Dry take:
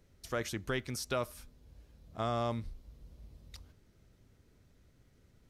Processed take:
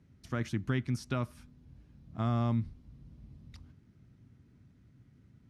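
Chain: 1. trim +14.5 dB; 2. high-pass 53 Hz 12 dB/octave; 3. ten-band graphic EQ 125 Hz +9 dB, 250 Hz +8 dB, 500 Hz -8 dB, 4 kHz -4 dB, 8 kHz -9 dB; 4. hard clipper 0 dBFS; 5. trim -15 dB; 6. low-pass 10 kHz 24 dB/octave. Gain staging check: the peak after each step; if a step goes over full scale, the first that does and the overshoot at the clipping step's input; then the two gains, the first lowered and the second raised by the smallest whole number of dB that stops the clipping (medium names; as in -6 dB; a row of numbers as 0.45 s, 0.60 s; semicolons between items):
-3.5 dBFS, -4.0 dBFS, -2.5 dBFS, -2.5 dBFS, -17.5 dBFS, -17.5 dBFS; nothing clips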